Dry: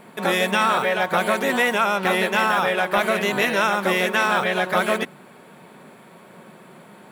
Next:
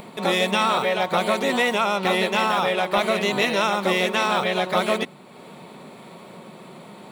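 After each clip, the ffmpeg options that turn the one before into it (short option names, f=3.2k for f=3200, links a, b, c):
-af "equalizer=f=1.6k:t=o:w=0.33:g=-10,equalizer=f=4k:t=o:w=0.33:g=6,equalizer=f=12.5k:t=o:w=0.33:g=-11,acompressor=mode=upward:threshold=-35dB:ratio=2.5"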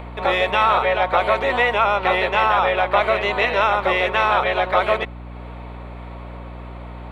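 -filter_complex "[0:a]acrossover=split=420 3000:gain=0.0794 1 0.0708[a][b][c];[a][b][c]amix=inputs=3:normalize=0,aeval=exprs='val(0)+0.0112*(sin(2*PI*60*n/s)+sin(2*PI*2*60*n/s)/2+sin(2*PI*3*60*n/s)/3+sin(2*PI*4*60*n/s)/4+sin(2*PI*5*60*n/s)/5)':c=same,volume=5.5dB"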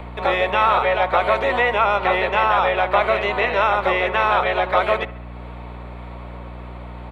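-filter_complex "[0:a]acrossover=split=130|2900[a][b][c];[b]aecho=1:1:68|136|204|272|340:0.133|0.0787|0.0464|0.0274|0.0162[d];[c]alimiter=level_in=2.5dB:limit=-24dB:level=0:latency=1:release=230,volume=-2.5dB[e];[a][d][e]amix=inputs=3:normalize=0"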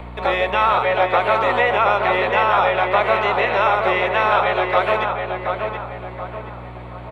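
-filter_complex "[0:a]asplit=2[a][b];[b]adelay=726,lowpass=f=2.6k:p=1,volume=-5dB,asplit=2[c][d];[d]adelay=726,lowpass=f=2.6k:p=1,volume=0.42,asplit=2[e][f];[f]adelay=726,lowpass=f=2.6k:p=1,volume=0.42,asplit=2[g][h];[h]adelay=726,lowpass=f=2.6k:p=1,volume=0.42,asplit=2[i][j];[j]adelay=726,lowpass=f=2.6k:p=1,volume=0.42[k];[a][c][e][g][i][k]amix=inputs=6:normalize=0"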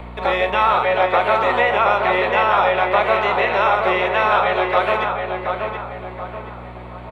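-filter_complex "[0:a]asplit=2[a][b];[b]adelay=38,volume=-11dB[c];[a][c]amix=inputs=2:normalize=0"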